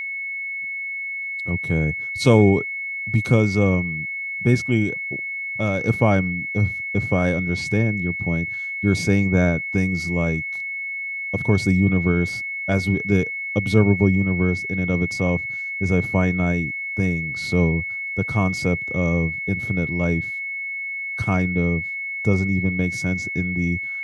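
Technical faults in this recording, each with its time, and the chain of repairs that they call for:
tone 2200 Hz -26 dBFS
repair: notch 2200 Hz, Q 30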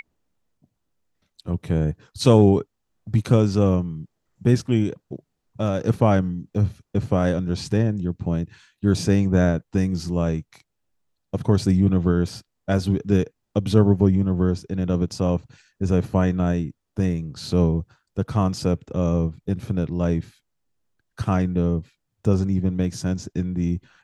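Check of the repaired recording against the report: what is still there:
none

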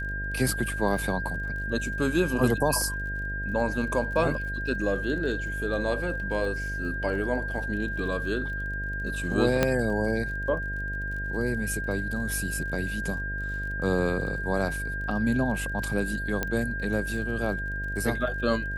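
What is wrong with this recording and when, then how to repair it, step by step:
buzz 50 Hz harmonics 14 -34 dBFS
crackle 32/s -38 dBFS
tone 1600 Hz -32 dBFS
9.63 pop -8 dBFS
16.43 pop -12 dBFS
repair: de-click; de-hum 50 Hz, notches 14; notch 1600 Hz, Q 30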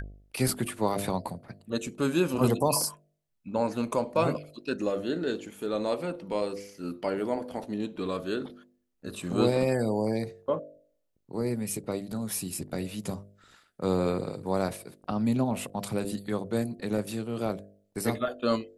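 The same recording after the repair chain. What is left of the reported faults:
none

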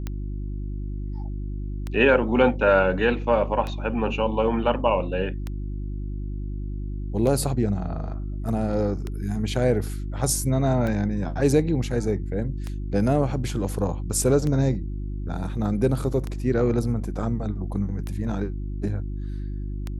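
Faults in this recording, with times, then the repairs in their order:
hum 50 Hz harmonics 7 -30 dBFS
tick 33 1/3 rpm -17 dBFS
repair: de-click; de-hum 50 Hz, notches 7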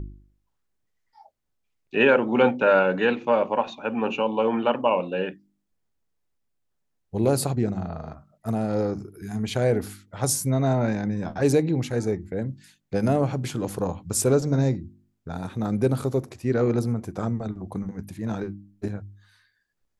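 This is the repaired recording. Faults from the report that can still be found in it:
none

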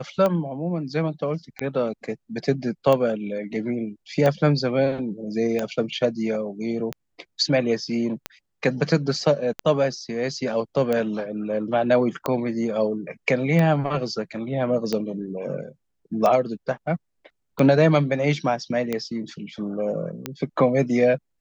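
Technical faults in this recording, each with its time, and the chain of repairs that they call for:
tick 45 rpm -11 dBFS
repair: de-click

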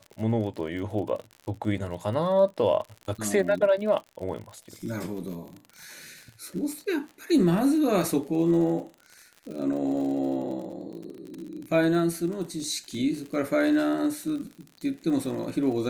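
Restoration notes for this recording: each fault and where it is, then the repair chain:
crackle 55/s -35 dBFS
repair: de-click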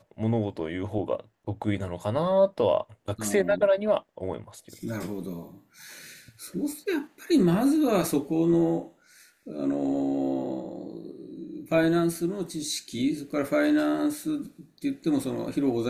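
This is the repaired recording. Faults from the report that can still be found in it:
none

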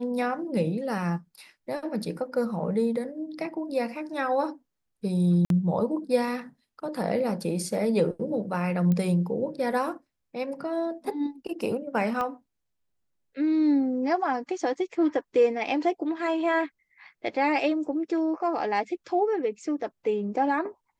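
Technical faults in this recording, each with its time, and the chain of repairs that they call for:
5.45–5.5 gap 52 ms
8.92 pop -17 dBFS
12.21 pop -18 dBFS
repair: de-click; interpolate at 5.45, 52 ms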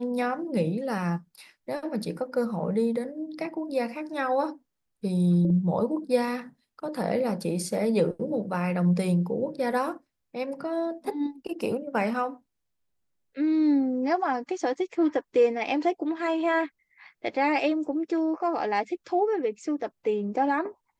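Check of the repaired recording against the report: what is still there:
12.21 pop

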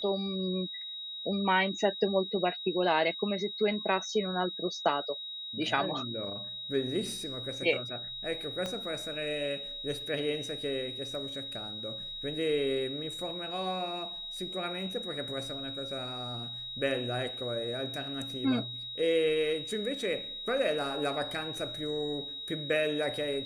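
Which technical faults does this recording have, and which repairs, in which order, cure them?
tone 3800 Hz -38 dBFS
8.66 pop -21 dBFS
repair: de-click; notch 3800 Hz, Q 30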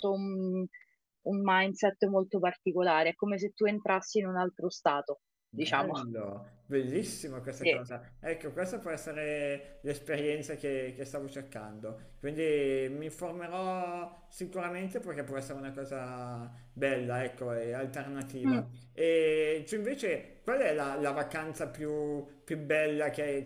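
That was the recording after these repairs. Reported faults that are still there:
8.66 pop

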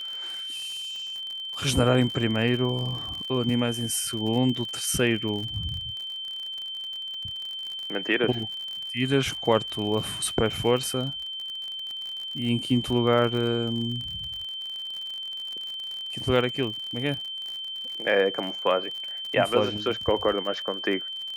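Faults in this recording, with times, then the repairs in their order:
crackle 55/s -32 dBFS
tone 3100 Hz -32 dBFS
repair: de-click; notch 3100 Hz, Q 30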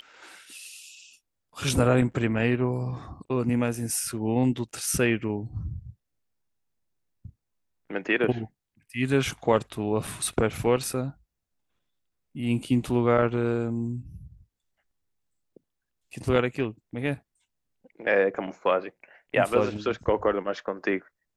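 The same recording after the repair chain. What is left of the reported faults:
none

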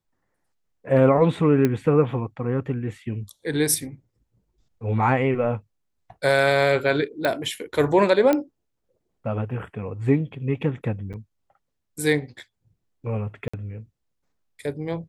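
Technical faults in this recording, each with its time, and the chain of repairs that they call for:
1.65 pop -9 dBFS
7.25 pop -11 dBFS
8.33 pop -9 dBFS
11.13–11.14 gap 7.7 ms
13.48–13.54 gap 55 ms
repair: de-click; interpolate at 11.13, 7.7 ms; interpolate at 13.48, 55 ms

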